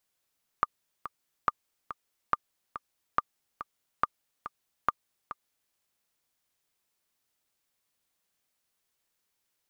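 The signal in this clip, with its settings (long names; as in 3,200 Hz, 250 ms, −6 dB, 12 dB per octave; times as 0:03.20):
click track 141 BPM, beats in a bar 2, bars 6, 1,200 Hz, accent 13 dB −10 dBFS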